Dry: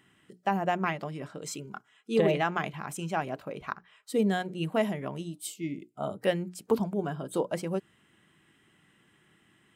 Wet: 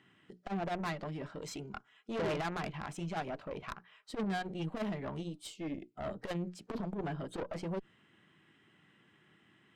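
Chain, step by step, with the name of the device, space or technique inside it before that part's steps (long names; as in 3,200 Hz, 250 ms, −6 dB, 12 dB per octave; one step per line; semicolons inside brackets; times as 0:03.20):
valve radio (band-pass filter 83–4,800 Hz; tube saturation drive 32 dB, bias 0.6; saturating transformer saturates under 150 Hz)
level +1.5 dB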